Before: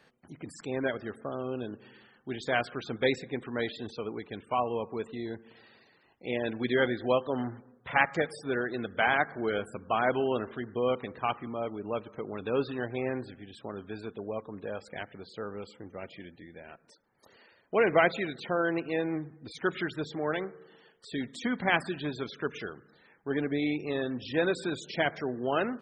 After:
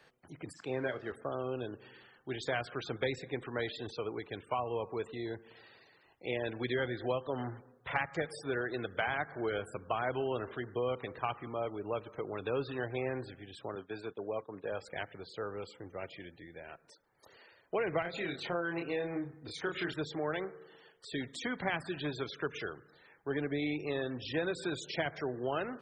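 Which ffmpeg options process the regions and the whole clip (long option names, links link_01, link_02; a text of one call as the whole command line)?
ffmpeg -i in.wav -filter_complex "[0:a]asettb=1/sr,asplit=3[link_01][link_02][link_03];[link_01]atrim=end=0.534[link_04];[link_02]atrim=start=0.53:end=1.12,asetpts=PTS-STARTPTS,afade=type=in:duration=0.004:curve=qsin,afade=type=out:start_time=0.586:duration=0.004:curve=qsin,aeval=exprs='sgn(val(0))*max(abs(val(0))-0.001,0)':channel_layout=same,highpass=100,lowpass=4300,asplit=2[link_05][link_06];[link_06]adelay=31,volume=-12.5dB[link_07];[link_05][link_07]amix=inputs=2:normalize=0,atrim=end_sample=26019[link_08];[link_03]atrim=start=1.116[link_09];[link_04][link_08]acrossfade=duration=0.004:curve1=hsin:curve2=qsin[link_10];[link_10][link_09]acrossfade=duration=0.004:curve1=qsin:curve2=hsin,asettb=1/sr,asplit=3[link_11][link_12][link_13];[link_11]atrim=end=13.754[link_14];[link_12]atrim=start=13.75:end=14.72,asetpts=PTS-STARTPTS,afade=type=in:duration=0.004:curve=qsin,afade=type=out:start_time=0.966:duration=0.004:curve=qsin,agate=range=-33dB:threshold=-43dB:ratio=3:release=100:detection=peak,highpass=130,lowpass=8000[link_15];[link_13]atrim=start=14.716[link_16];[link_14][link_15]acrossfade=duration=0.004:curve1=hsin:curve2=qsin[link_17];[link_17][link_16]acrossfade=duration=0.004:curve1=qsin:curve2=hsin,asettb=1/sr,asplit=3[link_18][link_19][link_20];[link_18]atrim=end=18.024[link_21];[link_19]atrim=start=18.02:end=19.94,asetpts=PTS-STARTPTS,afade=type=in:duration=0.004:curve=qsin,afade=type=out:start_time=1.916:duration=0.004:curve=qsin,acompressor=threshold=-31dB:ratio=2:attack=3.2:release=140:knee=1:detection=peak,asplit=2[link_22][link_23];[link_23]adelay=29,volume=-4dB[link_24];[link_22][link_24]amix=inputs=2:normalize=0,atrim=end_sample=84672[link_25];[link_20]atrim=start=19.936[link_26];[link_21][link_25]acrossfade=duration=0.004:curve1=hsin:curve2=qsin[link_27];[link_27][link_26]acrossfade=duration=0.004:curve1=qsin:curve2=hsin,acrossover=split=200[link_28][link_29];[link_29]acompressor=threshold=-30dB:ratio=6[link_30];[link_28][link_30]amix=inputs=2:normalize=0,equalizer=frequency=220:width=2.5:gain=-9.5" out.wav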